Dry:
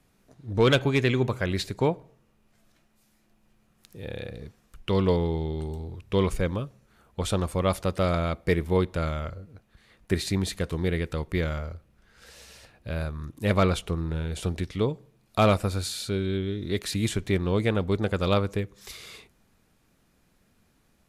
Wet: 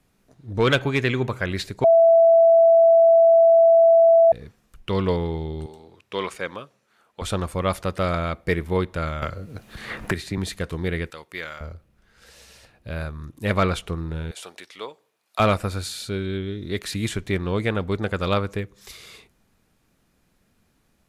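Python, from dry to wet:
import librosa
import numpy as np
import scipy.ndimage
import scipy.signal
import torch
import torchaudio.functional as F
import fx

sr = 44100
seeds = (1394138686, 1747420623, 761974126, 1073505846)

y = fx.weighting(x, sr, curve='A', at=(5.66, 7.22))
y = fx.band_squash(y, sr, depth_pct=100, at=(9.22, 10.38))
y = fx.highpass(y, sr, hz=1200.0, slope=6, at=(11.1, 11.61))
y = fx.highpass(y, sr, hz=740.0, slope=12, at=(14.31, 15.4))
y = fx.edit(y, sr, fx.bleep(start_s=1.84, length_s=2.48, hz=664.0, db=-11.5), tone=tone)
y = fx.dynamic_eq(y, sr, hz=1600.0, q=0.94, threshold_db=-41.0, ratio=4.0, max_db=5)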